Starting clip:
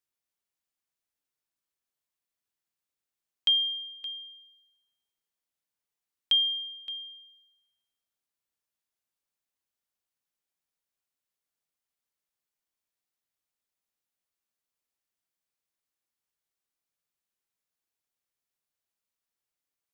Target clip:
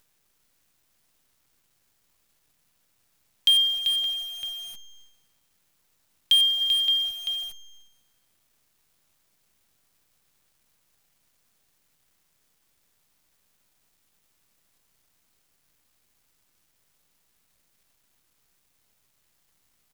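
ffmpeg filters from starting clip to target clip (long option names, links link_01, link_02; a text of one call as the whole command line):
ffmpeg -i in.wav -filter_complex "[0:a]acrossover=split=110|2200[link_01][link_02][link_03];[link_02]aeval=exprs='(mod(70.8*val(0)+1,2)-1)/70.8':channel_layout=same[link_04];[link_01][link_04][link_03]amix=inputs=3:normalize=0,asplit=3[link_05][link_06][link_07];[link_05]afade=type=out:start_time=6.6:duration=0.02[link_08];[link_06]equalizer=frequency=4100:width_type=o:width=1.7:gain=8,afade=type=in:start_time=6.6:duration=0.02,afade=type=out:start_time=7.09:duration=0.02[link_09];[link_07]afade=type=in:start_time=7.09:duration=0.02[link_10];[link_08][link_09][link_10]amix=inputs=3:normalize=0,aecho=1:1:389:0.501,asplit=2[link_11][link_12];[link_12]acompressor=mode=upward:threshold=-30dB:ratio=2.5,volume=-3dB[link_13];[link_11][link_13]amix=inputs=2:normalize=0,agate=range=-11dB:threshold=-54dB:ratio=16:detection=peak,acrusher=bits=8:dc=4:mix=0:aa=0.000001,bass=frequency=250:gain=7,treble=frequency=4000:gain=0,volume=2dB" out.wav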